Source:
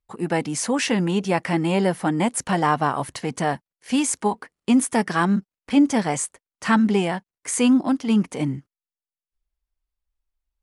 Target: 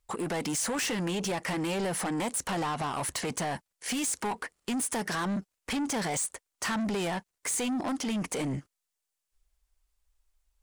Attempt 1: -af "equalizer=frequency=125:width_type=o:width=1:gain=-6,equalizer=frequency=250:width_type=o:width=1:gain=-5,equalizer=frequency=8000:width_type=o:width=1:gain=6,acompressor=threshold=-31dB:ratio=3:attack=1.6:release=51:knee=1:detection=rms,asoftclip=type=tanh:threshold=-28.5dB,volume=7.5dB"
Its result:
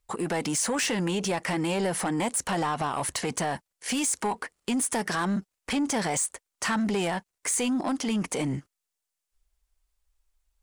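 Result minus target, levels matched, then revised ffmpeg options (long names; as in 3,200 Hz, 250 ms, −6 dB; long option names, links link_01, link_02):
soft clipping: distortion −6 dB
-af "equalizer=frequency=125:width_type=o:width=1:gain=-6,equalizer=frequency=250:width_type=o:width=1:gain=-5,equalizer=frequency=8000:width_type=o:width=1:gain=6,acompressor=threshold=-31dB:ratio=3:attack=1.6:release=51:knee=1:detection=rms,asoftclip=type=tanh:threshold=-35dB,volume=7.5dB"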